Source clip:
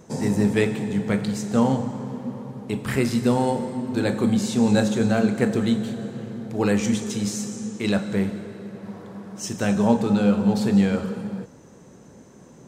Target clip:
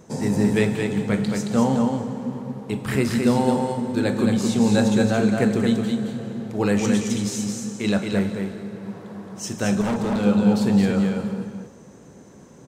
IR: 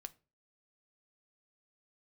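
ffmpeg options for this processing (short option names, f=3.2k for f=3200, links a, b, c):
-filter_complex "[0:a]asplit=2[a][b];[b]aecho=0:1:221:0.596[c];[a][c]amix=inputs=2:normalize=0,asettb=1/sr,asplit=3[d][e][f];[d]atrim=end=9.814[g];[e]atrim=start=9.81:end=10.23,asetpts=PTS-STARTPTS,afade=t=in:d=0.004:c=qsin,afade=t=out:st=0.416:d=0.004:c=qsin,asoftclip=type=hard:threshold=-20.5dB[h];[f]atrim=start=10.226[i];[g][h]acrossfade=d=0.004:c1=hsin:c2=qsin[j];[j][i]acrossfade=d=0.004:c1=qsin:c2=hsin,asplit=2[k][l];[l]aecho=0:1:412:0.0891[m];[k][m]amix=inputs=2:normalize=0"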